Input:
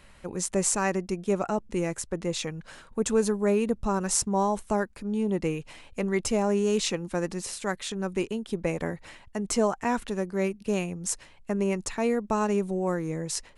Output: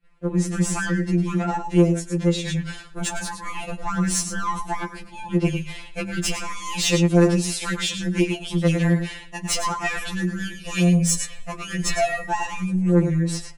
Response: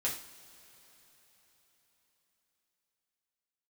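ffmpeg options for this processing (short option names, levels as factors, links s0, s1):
-filter_complex "[0:a]acrossover=split=550|2700[s0][s1][s2];[s2]dynaudnorm=f=300:g=9:m=5.31[s3];[s0][s1][s3]amix=inputs=3:normalize=0,aecho=1:1:107:0.335,asettb=1/sr,asplit=3[s4][s5][s6];[s4]atrim=end=1.824[s7];[s5]atrim=start=1.82:end=2.48,asetpts=PTS-STARTPTS,afade=t=in:d=0.004:c=qsin,afade=t=out:st=0.656:d=0.004:c=qsin,acompressor=threshold=0.0398:ratio=12[s8];[s6]atrim=start=2.476[s9];[s7][s8]acrossfade=d=0.004:c1=hsin:c2=qsin[s10];[s10][s9]acrossfade=d=0.004:c1=qsin:c2=hsin,asplit=3[s11][s12][s13];[s11]afade=t=out:st=10.52:d=0.02[s14];[s12]aecho=1:1:7.5:0.92,afade=t=in:st=10.52:d=0.02,afade=t=out:st=12.21:d=0.02[s15];[s13]afade=t=in:st=12.21:d=0.02[s16];[s14][s15][s16]amix=inputs=3:normalize=0,agate=range=0.0224:threshold=0.00891:ratio=3:detection=peak,bass=f=250:g=3,treble=f=4000:g=-10,asoftclip=type=tanh:threshold=0.0944,asplit=2[s17][s18];[1:a]atrim=start_sample=2205,afade=t=out:st=0.44:d=0.01,atrim=end_sample=19845[s19];[s18][s19]afir=irnorm=-1:irlink=0,volume=0.106[s20];[s17][s20]amix=inputs=2:normalize=0,afftfilt=real='re*2.83*eq(mod(b,8),0)':imag='im*2.83*eq(mod(b,8),0)':win_size=2048:overlap=0.75,volume=2.51"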